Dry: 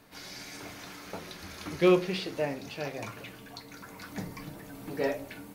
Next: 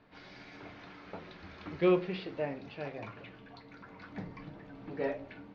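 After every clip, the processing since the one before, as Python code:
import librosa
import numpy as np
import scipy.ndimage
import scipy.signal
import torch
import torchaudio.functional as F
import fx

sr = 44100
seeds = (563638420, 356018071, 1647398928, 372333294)

y = scipy.signal.sosfilt(scipy.signal.bessel(6, 2700.0, 'lowpass', norm='mag', fs=sr, output='sos'), x)
y = y * 10.0 ** (-4.0 / 20.0)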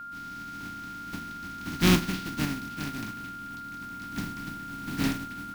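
y = fx.spec_flatten(x, sr, power=0.25)
y = fx.low_shelf_res(y, sr, hz=360.0, db=11.5, q=3.0)
y = y + 10.0 ** (-38.0 / 20.0) * np.sin(2.0 * np.pi * 1400.0 * np.arange(len(y)) / sr)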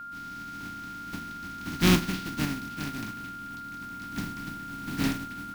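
y = x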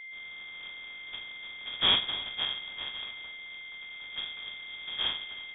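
y = fx.echo_multitap(x, sr, ms=(42, 281), db=(-11.5, -18.5))
y = fx.freq_invert(y, sr, carrier_hz=3500)
y = y * 10.0 ** (-4.0 / 20.0)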